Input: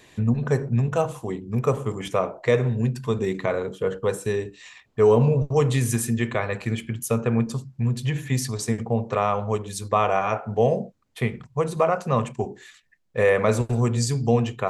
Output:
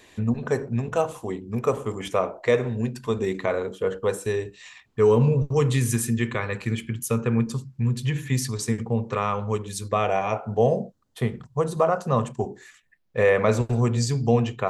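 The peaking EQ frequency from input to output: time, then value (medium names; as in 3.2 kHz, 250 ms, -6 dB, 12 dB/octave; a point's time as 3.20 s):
peaking EQ -10 dB 0.47 oct
4.20 s 140 Hz
4.99 s 670 Hz
9.74 s 670 Hz
10.61 s 2.3 kHz
12.49 s 2.3 kHz
13.18 s 10 kHz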